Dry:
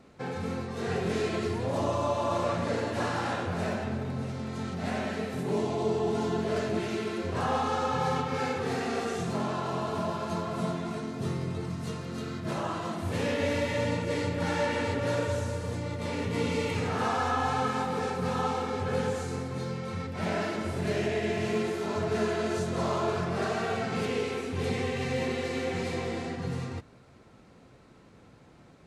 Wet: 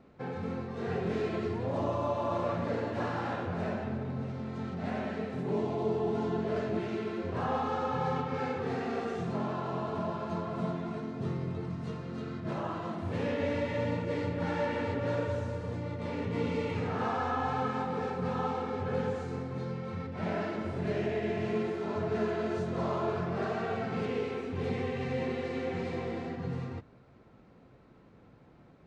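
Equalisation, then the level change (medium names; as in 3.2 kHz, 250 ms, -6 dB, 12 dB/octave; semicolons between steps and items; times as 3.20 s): tape spacing loss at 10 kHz 21 dB; peaking EQ 84 Hz -3.5 dB 0.25 oct; -1.5 dB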